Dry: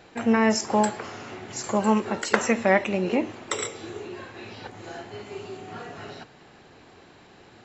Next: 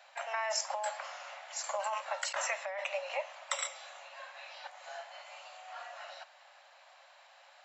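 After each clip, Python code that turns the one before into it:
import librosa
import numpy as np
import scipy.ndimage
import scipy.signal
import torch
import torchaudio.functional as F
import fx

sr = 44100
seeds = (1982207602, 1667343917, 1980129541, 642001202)

y = scipy.signal.sosfilt(scipy.signal.cheby1(8, 1.0, 550.0, 'highpass', fs=sr, output='sos'), x)
y = fx.over_compress(y, sr, threshold_db=-27.0, ratio=-1.0)
y = y * librosa.db_to_amplitude(-6.5)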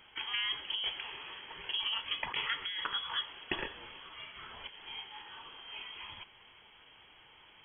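y = fx.freq_invert(x, sr, carrier_hz=3900)
y = fx.small_body(y, sr, hz=(390.0, 890.0), ring_ms=20, db=8)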